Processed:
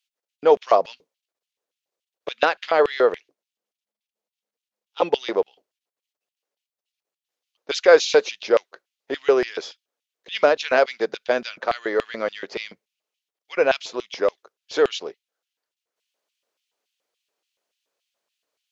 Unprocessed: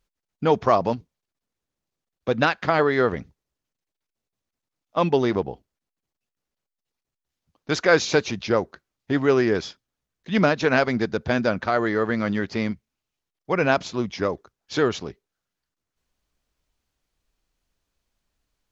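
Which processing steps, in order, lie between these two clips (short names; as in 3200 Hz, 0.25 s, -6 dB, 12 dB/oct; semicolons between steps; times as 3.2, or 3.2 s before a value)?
3.16–5.02 ring modulator 210 Hz; LFO high-pass square 3.5 Hz 490–2900 Hz; gain -1 dB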